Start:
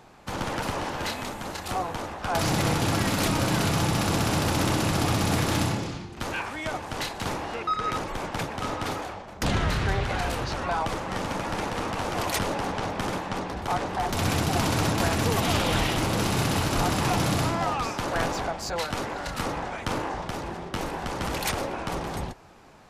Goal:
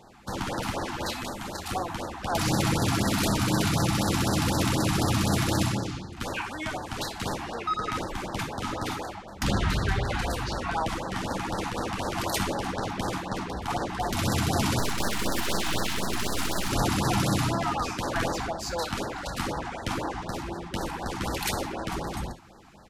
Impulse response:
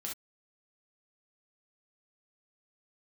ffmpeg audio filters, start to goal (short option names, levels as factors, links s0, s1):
-filter_complex "[0:a]asplit=2[s0][s1];[s1]adelay=577.3,volume=0.0398,highshelf=f=4000:g=-13[s2];[s0][s2]amix=inputs=2:normalize=0,asettb=1/sr,asplit=3[s3][s4][s5];[s3]atrim=end=14.794[s6];[s4]atrim=start=14.79:end=16.69,asetpts=PTS-STARTPTS,afade=t=in:d=0.004:c=qsin,afade=t=out:st=1.896:d=0.004:c=qsin,aeval=exprs='abs(val(0))':c=same[s7];[s5]atrim=start=16.686[s8];[s6][s7]acrossfade=d=0.004:c1=hsin:c2=qsin[s9];[s9][s8]acrossfade=d=0.004:c1=qsin:c2=hsin,asplit=2[s10][s11];[1:a]atrim=start_sample=2205[s12];[s11][s12]afir=irnorm=-1:irlink=0,volume=0.794[s13];[s10][s13]amix=inputs=2:normalize=0,afftfilt=real='re*(1-between(b*sr/1024,440*pow(2800/440,0.5+0.5*sin(2*PI*4*pts/sr))/1.41,440*pow(2800/440,0.5+0.5*sin(2*PI*4*pts/sr))*1.41))':imag='im*(1-between(b*sr/1024,440*pow(2800/440,0.5+0.5*sin(2*PI*4*pts/sr))/1.41,440*pow(2800/440,0.5+0.5*sin(2*PI*4*pts/sr))*1.41))':win_size=1024:overlap=0.75,volume=0.631"